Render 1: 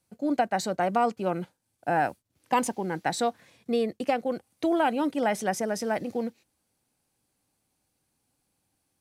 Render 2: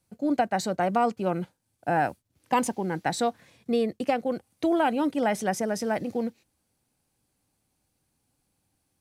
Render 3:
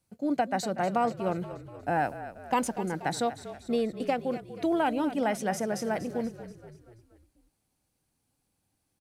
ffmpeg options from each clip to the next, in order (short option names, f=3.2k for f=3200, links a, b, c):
-af "lowshelf=f=170:g=6"
-filter_complex "[0:a]asplit=6[a][b][c][d][e][f];[b]adelay=240,afreqshift=-38,volume=-13dB[g];[c]adelay=480,afreqshift=-76,volume=-18.5dB[h];[d]adelay=720,afreqshift=-114,volume=-24dB[i];[e]adelay=960,afreqshift=-152,volume=-29.5dB[j];[f]adelay=1200,afreqshift=-190,volume=-35.1dB[k];[a][g][h][i][j][k]amix=inputs=6:normalize=0,volume=-3dB"